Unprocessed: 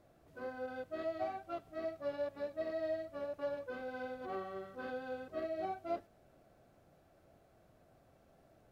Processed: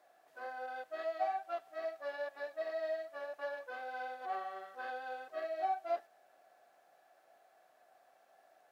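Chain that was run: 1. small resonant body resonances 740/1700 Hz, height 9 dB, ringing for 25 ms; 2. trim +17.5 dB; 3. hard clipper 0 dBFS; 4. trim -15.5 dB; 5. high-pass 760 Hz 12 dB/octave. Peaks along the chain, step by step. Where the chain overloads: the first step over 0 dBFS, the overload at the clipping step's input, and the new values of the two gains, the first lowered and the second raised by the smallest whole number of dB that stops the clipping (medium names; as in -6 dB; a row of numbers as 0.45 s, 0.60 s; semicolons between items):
-22.0 dBFS, -4.5 dBFS, -4.5 dBFS, -20.0 dBFS, -23.5 dBFS; nothing clips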